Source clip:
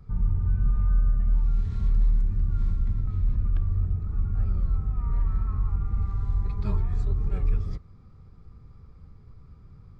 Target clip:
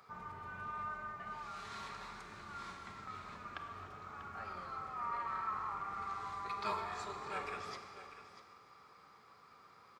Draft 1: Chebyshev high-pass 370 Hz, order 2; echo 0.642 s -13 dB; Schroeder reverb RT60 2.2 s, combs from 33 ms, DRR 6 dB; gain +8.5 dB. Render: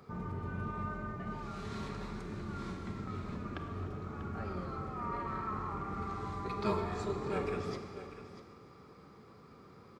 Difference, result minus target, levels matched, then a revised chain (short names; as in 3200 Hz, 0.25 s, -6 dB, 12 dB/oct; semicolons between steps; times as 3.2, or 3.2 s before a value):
500 Hz band +7.5 dB
Chebyshev high-pass 930 Hz, order 2; echo 0.642 s -13 dB; Schroeder reverb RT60 2.2 s, combs from 33 ms, DRR 6 dB; gain +8.5 dB